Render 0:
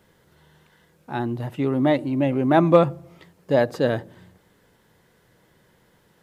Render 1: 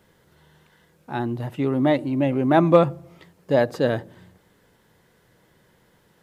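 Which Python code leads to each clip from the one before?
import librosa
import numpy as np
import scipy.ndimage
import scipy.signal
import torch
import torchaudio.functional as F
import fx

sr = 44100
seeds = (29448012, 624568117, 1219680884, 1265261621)

y = x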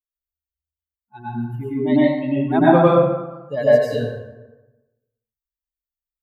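y = fx.bin_expand(x, sr, power=3.0)
y = fx.rev_plate(y, sr, seeds[0], rt60_s=1.1, hf_ratio=0.55, predelay_ms=85, drr_db=-8.5)
y = y * librosa.db_to_amplitude(-1.5)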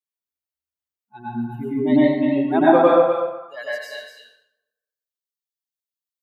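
y = fx.filter_sweep_highpass(x, sr, from_hz=170.0, to_hz=3500.0, start_s=2.2, end_s=4.3, q=1.1)
y = y + 10.0 ** (-8.5 / 20.0) * np.pad(y, (int(245 * sr / 1000.0), 0))[:len(y)]
y = y * librosa.db_to_amplitude(-1.0)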